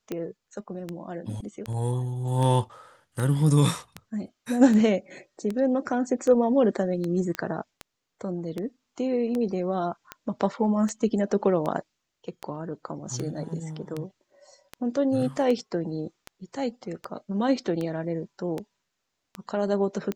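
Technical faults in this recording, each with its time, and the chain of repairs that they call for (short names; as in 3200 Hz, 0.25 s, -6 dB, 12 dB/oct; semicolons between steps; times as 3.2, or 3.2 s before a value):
tick 78 rpm -18 dBFS
7.35 pop -15 dBFS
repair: de-click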